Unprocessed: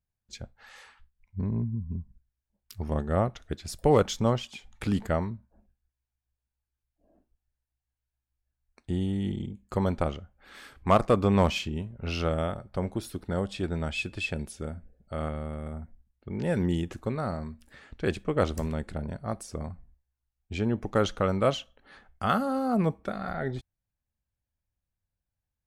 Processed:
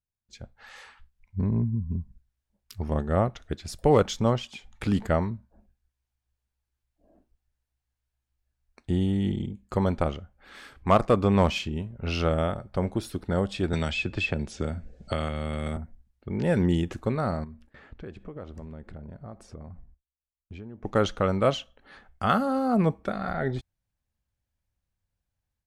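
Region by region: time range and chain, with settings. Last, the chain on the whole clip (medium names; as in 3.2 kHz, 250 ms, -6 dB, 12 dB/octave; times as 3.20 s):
13.73–15.77 s: low-pass 7.7 kHz 24 dB/octave + three bands compressed up and down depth 100%
17.44–20.85 s: low-pass 1.4 kHz 6 dB/octave + gate with hold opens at -47 dBFS, closes at -55 dBFS + compression 4:1, threshold -43 dBFS
whole clip: treble shelf 10 kHz -7.5 dB; level rider gain up to 11.5 dB; trim -7.5 dB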